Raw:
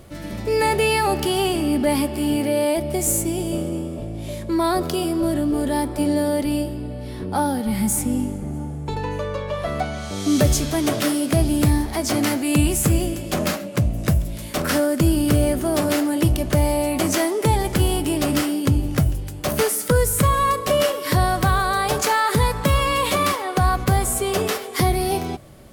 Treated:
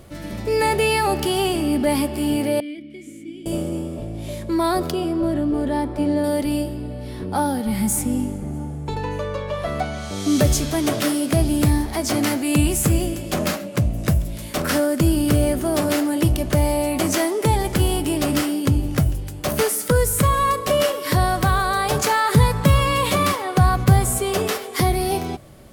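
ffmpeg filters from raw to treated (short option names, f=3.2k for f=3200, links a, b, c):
-filter_complex "[0:a]asettb=1/sr,asplit=3[a][b][c];[a]atrim=end=2.604[d];[b]atrim=start=2.6:end=3.46,asetpts=PTS-STARTPTS,afade=t=in:d=0.004:c=qsin,afade=t=out:st=0.856:d=0.004:c=qsin,asplit=3[e][f][g];[e]bandpass=f=270:t=q:w=8,volume=0dB[h];[f]bandpass=f=2.29k:t=q:w=8,volume=-6dB[i];[g]bandpass=f=3.01k:t=q:w=8,volume=-9dB[j];[h][i][j]amix=inputs=3:normalize=0[k];[c]atrim=start=3.456[l];[d][k]acrossfade=d=0.004:c1=hsin:c2=qsin[m];[m][l]acrossfade=d=0.004:c1=qsin:c2=hsin,asettb=1/sr,asplit=3[n][o][p];[n]atrim=end=4.914[q];[o]atrim=start=4.91:end=6.24,asetpts=PTS-STARTPTS,afade=t=in:d=0.004:c=qsin,afade=t=out:st=1.326:d=0.004:c=qsin,lowpass=f=2.3k:p=1[r];[p]atrim=start=6.236[s];[q][r]acrossfade=d=0.004:c1=hsin:c2=qsin[t];[t][s]acrossfade=d=0.004:c1=qsin:c2=hsin,asettb=1/sr,asplit=3[u][v][w];[u]atrim=end=21.934[x];[v]atrim=start=21.93:end=24.2,asetpts=PTS-STARTPTS,afade=t=in:d=0.004:c=qsin,afade=t=out:st=2.266:d=0.004:c=qsin,equalizer=f=130:w=1.2:g=8[y];[w]atrim=start=24.196[z];[x][y]acrossfade=d=0.004:c1=hsin:c2=qsin[aa];[aa][z]acrossfade=d=0.004:c1=qsin:c2=hsin"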